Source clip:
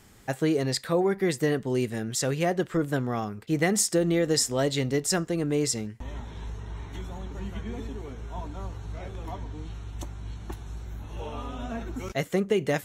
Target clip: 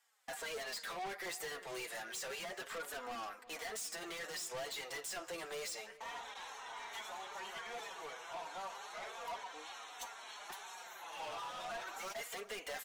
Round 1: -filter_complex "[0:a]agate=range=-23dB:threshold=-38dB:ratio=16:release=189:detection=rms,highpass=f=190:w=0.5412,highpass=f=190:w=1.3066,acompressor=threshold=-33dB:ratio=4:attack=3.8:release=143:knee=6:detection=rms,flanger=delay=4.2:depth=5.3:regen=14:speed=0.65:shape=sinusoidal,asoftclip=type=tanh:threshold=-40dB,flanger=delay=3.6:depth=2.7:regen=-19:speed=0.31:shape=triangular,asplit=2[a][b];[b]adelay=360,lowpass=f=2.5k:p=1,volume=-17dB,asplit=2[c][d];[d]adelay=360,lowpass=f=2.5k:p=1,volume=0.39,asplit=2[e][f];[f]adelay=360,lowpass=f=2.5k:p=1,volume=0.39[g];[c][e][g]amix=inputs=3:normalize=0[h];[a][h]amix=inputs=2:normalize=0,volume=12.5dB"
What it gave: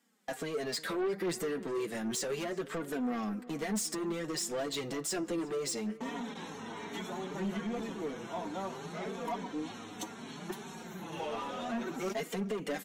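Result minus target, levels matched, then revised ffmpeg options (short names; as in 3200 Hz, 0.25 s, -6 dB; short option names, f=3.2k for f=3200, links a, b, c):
250 Hz band +15.0 dB; soft clip: distortion -6 dB
-filter_complex "[0:a]agate=range=-23dB:threshold=-38dB:ratio=16:release=189:detection=rms,highpass=f=660:w=0.5412,highpass=f=660:w=1.3066,acompressor=threshold=-33dB:ratio=4:attack=3.8:release=143:knee=6:detection=rms,flanger=delay=4.2:depth=5.3:regen=14:speed=0.65:shape=sinusoidal,asoftclip=type=tanh:threshold=-50.5dB,flanger=delay=3.6:depth=2.7:regen=-19:speed=0.31:shape=triangular,asplit=2[a][b];[b]adelay=360,lowpass=f=2.5k:p=1,volume=-17dB,asplit=2[c][d];[d]adelay=360,lowpass=f=2.5k:p=1,volume=0.39,asplit=2[e][f];[f]adelay=360,lowpass=f=2.5k:p=1,volume=0.39[g];[c][e][g]amix=inputs=3:normalize=0[h];[a][h]amix=inputs=2:normalize=0,volume=12.5dB"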